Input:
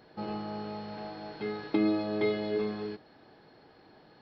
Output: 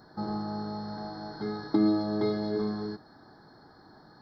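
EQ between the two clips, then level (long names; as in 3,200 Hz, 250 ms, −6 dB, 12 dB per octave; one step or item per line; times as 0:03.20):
Chebyshev band-stop filter 1,500–4,600 Hz, order 2
parametric band 500 Hz −8.5 dB 0.86 octaves
dynamic equaliser 1,400 Hz, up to −4 dB, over −52 dBFS, Q 1.2
+6.5 dB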